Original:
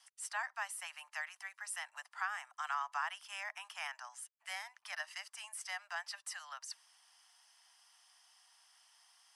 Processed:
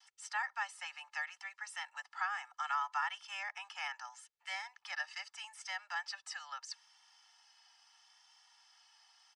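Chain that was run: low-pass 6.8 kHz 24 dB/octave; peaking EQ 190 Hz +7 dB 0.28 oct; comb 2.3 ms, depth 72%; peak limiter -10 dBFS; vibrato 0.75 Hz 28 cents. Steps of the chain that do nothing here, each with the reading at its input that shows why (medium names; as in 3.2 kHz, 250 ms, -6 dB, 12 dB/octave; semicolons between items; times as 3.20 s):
peaking EQ 190 Hz: input has nothing below 540 Hz; peak limiter -10 dBFS: peak at its input -24.5 dBFS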